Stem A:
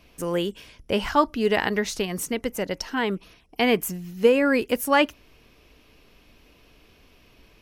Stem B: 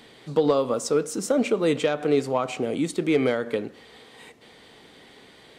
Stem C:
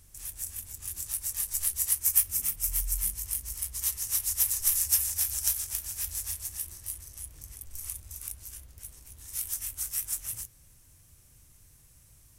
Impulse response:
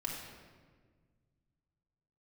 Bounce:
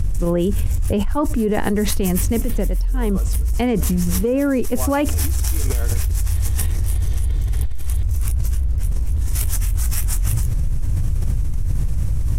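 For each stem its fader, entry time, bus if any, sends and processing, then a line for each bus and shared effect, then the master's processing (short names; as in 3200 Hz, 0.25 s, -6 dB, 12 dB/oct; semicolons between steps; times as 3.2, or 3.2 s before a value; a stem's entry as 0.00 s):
0.0 dB, 0.00 s, bus A, no send, three-band expander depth 70%
-10.5 dB, 2.45 s, no bus, no send, comb 2.8 ms, depth 52%; compressor 4:1, threshold -27 dBFS, peak gain reduction 11 dB; auto swell 0.58 s
+3.0 dB, 0.00 s, bus A, no send, dry
bus A: 0.0 dB, tilt -4 dB/oct; compressor, threshold -21 dBFS, peak gain reduction 17.5 dB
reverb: off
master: fast leveller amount 100%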